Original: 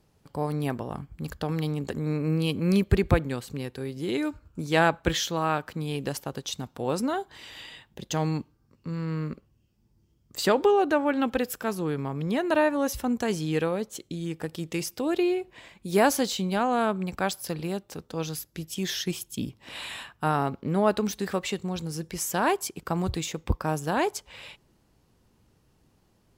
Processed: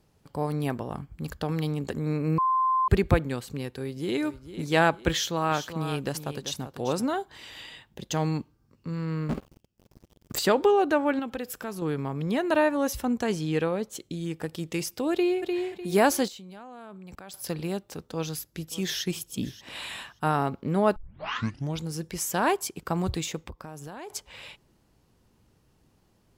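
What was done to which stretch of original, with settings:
2.38–2.88 s: bleep 1.04 kHz -20.5 dBFS
3.66–4.19 s: echo throw 450 ms, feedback 40%, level -12.5 dB
5.12–7.15 s: delay 389 ms -10.5 dB
9.29–10.39 s: waveshaping leveller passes 5
11.19–11.82 s: compression 2:1, threshold -34 dBFS
13.05–13.82 s: low-pass 8.9 kHz -> 5 kHz 6 dB/octave
15.12–15.55 s: echo throw 300 ms, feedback 30%, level -4.5 dB
16.28–17.34 s: level held to a coarse grid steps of 22 dB
18.01–19.03 s: echo throw 580 ms, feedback 15%, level -17.5 dB
20.96 s: tape start 0.88 s
23.42–24.10 s: compression 8:1, threshold -37 dBFS

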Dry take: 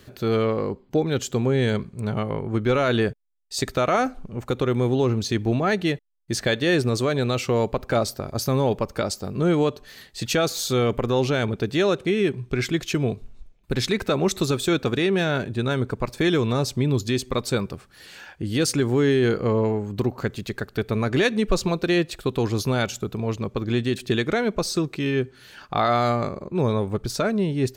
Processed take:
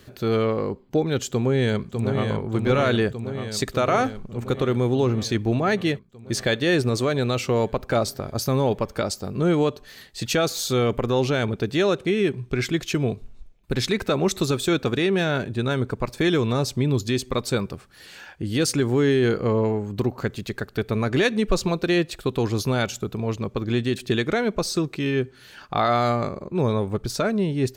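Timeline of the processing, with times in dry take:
1.29–2.28 s: echo throw 600 ms, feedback 75%, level -6 dB

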